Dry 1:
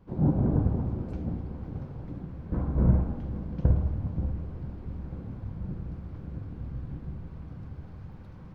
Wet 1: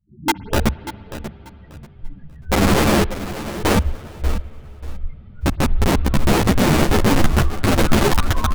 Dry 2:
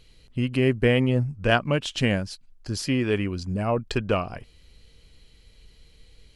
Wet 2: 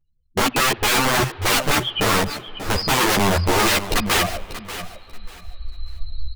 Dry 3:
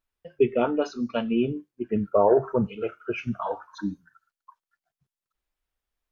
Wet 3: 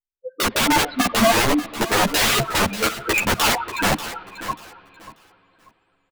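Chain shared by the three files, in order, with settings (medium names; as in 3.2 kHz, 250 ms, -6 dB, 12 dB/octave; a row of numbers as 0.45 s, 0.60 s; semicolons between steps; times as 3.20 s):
self-modulated delay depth 0.17 ms; recorder AGC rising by 6.3 dB/s; low-pass 4.7 kHz 12 dB/octave; spectral noise reduction 28 dB; wavefolder -15.5 dBFS; loudest bins only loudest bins 8; integer overflow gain 25.5 dB; feedback delay 588 ms, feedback 23%, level -13 dB; spring tank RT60 4 s, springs 57 ms, chirp 30 ms, DRR 19.5 dB; three-phase chorus; normalise loudness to -19 LUFS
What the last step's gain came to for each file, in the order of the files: +18.5 dB, +15.5 dB, +15.5 dB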